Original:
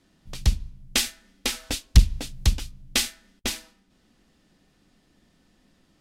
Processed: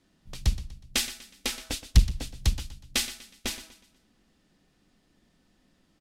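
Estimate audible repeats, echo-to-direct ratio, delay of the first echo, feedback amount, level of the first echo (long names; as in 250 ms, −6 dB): 3, −14.0 dB, 122 ms, 39%, −14.5 dB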